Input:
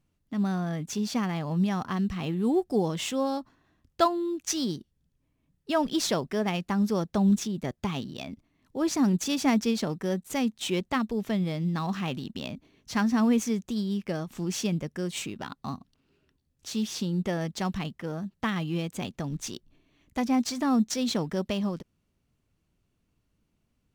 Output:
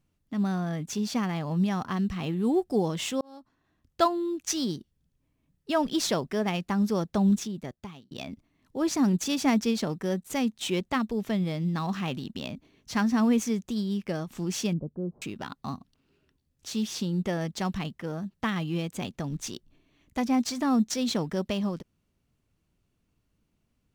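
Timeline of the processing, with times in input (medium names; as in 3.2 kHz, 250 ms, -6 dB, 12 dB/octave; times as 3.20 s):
3.21–4.06 s: fade in
7.26–8.11 s: fade out
14.73–15.22 s: Gaussian low-pass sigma 12 samples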